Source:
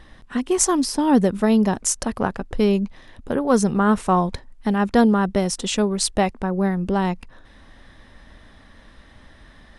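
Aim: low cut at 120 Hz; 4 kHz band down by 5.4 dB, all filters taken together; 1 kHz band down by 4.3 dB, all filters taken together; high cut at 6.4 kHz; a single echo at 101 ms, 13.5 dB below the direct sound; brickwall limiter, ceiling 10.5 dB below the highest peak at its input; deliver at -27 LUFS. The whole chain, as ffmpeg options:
-af "highpass=120,lowpass=6400,equalizer=f=1000:t=o:g=-5.5,equalizer=f=4000:t=o:g=-6,alimiter=limit=0.158:level=0:latency=1,aecho=1:1:101:0.211,volume=0.891"

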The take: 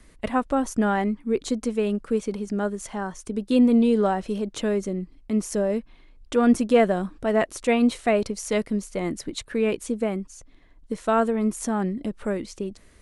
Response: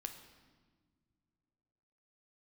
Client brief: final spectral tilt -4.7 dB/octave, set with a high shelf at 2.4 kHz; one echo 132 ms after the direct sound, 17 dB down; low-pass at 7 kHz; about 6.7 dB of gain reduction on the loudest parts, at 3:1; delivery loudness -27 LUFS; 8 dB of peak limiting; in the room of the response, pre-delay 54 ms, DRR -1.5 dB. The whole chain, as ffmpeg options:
-filter_complex "[0:a]lowpass=7000,highshelf=f=2400:g=6.5,acompressor=threshold=0.0794:ratio=3,alimiter=limit=0.0944:level=0:latency=1,aecho=1:1:132:0.141,asplit=2[s0][s1];[1:a]atrim=start_sample=2205,adelay=54[s2];[s1][s2]afir=irnorm=-1:irlink=0,volume=1.68[s3];[s0][s3]amix=inputs=2:normalize=0,volume=0.891"

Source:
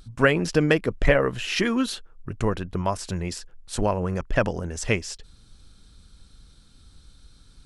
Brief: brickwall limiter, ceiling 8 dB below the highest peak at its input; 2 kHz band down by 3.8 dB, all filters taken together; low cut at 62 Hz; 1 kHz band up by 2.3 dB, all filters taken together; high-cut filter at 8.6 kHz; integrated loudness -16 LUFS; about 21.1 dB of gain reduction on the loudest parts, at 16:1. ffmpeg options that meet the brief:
-af "highpass=62,lowpass=8600,equalizer=f=1000:t=o:g=4.5,equalizer=f=2000:t=o:g=-6.5,acompressor=threshold=0.0178:ratio=16,volume=21.1,alimiter=limit=0.596:level=0:latency=1"

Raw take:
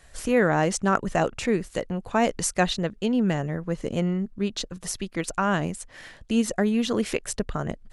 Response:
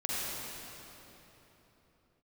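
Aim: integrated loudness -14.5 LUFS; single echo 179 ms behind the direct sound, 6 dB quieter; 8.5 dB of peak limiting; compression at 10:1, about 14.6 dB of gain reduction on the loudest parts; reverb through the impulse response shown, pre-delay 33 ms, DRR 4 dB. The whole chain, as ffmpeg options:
-filter_complex "[0:a]acompressor=threshold=0.0282:ratio=10,alimiter=level_in=1.26:limit=0.0631:level=0:latency=1,volume=0.794,aecho=1:1:179:0.501,asplit=2[s0][s1];[1:a]atrim=start_sample=2205,adelay=33[s2];[s1][s2]afir=irnorm=-1:irlink=0,volume=0.282[s3];[s0][s3]amix=inputs=2:normalize=0,volume=10.6"

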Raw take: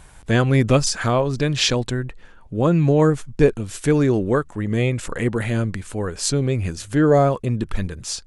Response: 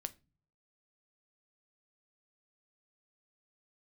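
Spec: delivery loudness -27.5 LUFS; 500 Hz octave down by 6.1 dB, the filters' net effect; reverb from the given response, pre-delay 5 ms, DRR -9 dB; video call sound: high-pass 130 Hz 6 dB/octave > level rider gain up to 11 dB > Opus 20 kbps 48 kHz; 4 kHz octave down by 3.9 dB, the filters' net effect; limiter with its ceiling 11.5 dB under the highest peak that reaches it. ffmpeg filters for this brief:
-filter_complex "[0:a]equalizer=f=500:t=o:g=-7,equalizer=f=4000:t=o:g=-5,alimiter=limit=0.168:level=0:latency=1,asplit=2[s0][s1];[1:a]atrim=start_sample=2205,adelay=5[s2];[s1][s2]afir=irnorm=-1:irlink=0,volume=3.76[s3];[s0][s3]amix=inputs=2:normalize=0,highpass=f=130:p=1,dynaudnorm=m=3.55,volume=0.355" -ar 48000 -c:a libopus -b:a 20k

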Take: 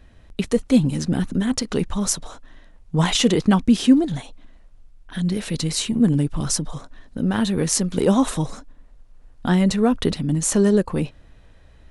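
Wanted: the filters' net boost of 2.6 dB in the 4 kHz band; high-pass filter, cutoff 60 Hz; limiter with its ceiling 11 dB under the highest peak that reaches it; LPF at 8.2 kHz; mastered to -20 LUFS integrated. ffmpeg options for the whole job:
-af "highpass=60,lowpass=8200,equalizer=f=4000:t=o:g=3.5,volume=1.58,alimiter=limit=0.316:level=0:latency=1"

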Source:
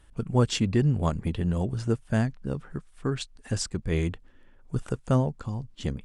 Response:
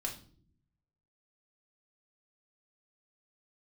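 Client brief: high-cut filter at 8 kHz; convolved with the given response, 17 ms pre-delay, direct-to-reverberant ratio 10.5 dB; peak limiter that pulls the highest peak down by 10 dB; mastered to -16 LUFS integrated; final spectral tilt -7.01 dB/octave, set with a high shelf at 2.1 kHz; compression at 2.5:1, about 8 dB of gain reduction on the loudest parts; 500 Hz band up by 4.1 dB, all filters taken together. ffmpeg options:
-filter_complex "[0:a]lowpass=8000,equalizer=f=500:t=o:g=5.5,highshelf=f=2100:g=-6.5,acompressor=threshold=0.0398:ratio=2.5,alimiter=level_in=1.33:limit=0.0631:level=0:latency=1,volume=0.75,asplit=2[s0][s1];[1:a]atrim=start_sample=2205,adelay=17[s2];[s1][s2]afir=irnorm=-1:irlink=0,volume=0.266[s3];[s0][s3]amix=inputs=2:normalize=0,volume=11.2"

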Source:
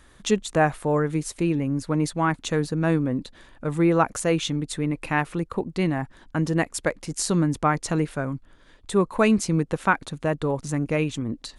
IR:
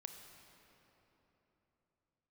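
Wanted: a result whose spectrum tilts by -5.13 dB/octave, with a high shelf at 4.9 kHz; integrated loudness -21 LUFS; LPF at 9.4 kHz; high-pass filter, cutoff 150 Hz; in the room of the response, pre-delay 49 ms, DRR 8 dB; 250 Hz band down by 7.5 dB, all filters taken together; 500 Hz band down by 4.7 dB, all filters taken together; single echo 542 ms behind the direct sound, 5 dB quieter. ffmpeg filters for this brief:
-filter_complex "[0:a]highpass=150,lowpass=9400,equalizer=f=250:t=o:g=-9,equalizer=f=500:t=o:g=-3,highshelf=f=4900:g=-6.5,aecho=1:1:542:0.562,asplit=2[s0][s1];[1:a]atrim=start_sample=2205,adelay=49[s2];[s1][s2]afir=irnorm=-1:irlink=0,volume=0.668[s3];[s0][s3]amix=inputs=2:normalize=0,volume=2.11"

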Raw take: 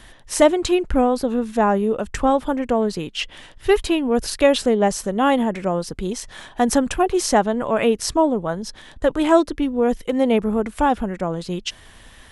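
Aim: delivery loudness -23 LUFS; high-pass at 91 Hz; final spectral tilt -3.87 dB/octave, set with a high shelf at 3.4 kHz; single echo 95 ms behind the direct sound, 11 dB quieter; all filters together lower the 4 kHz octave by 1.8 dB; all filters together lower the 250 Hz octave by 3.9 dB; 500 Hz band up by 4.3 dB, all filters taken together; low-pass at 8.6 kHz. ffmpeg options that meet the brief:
-af "highpass=91,lowpass=8600,equalizer=f=250:t=o:g=-7.5,equalizer=f=500:t=o:g=7,highshelf=f=3400:g=6.5,equalizer=f=4000:t=o:g=-7.5,aecho=1:1:95:0.282,volume=0.531"

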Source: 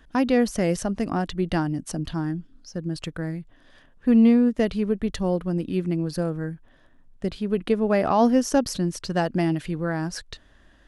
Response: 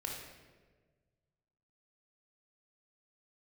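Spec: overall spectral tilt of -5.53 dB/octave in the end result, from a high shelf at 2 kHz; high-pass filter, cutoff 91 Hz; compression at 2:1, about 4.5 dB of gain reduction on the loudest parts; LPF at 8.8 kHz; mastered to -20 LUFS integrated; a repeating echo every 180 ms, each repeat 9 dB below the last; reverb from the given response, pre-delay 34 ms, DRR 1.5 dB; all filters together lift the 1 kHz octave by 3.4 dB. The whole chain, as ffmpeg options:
-filter_complex "[0:a]highpass=91,lowpass=8800,equalizer=f=1000:t=o:g=3.5,highshelf=f=2000:g=5,acompressor=threshold=0.0891:ratio=2,aecho=1:1:180|360|540|720:0.355|0.124|0.0435|0.0152,asplit=2[s0][s1];[1:a]atrim=start_sample=2205,adelay=34[s2];[s1][s2]afir=irnorm=-1:irlink=0,volume=0.794[s3];[s0][s3]amix=inputs=2:normalize=0,volume=1.5"

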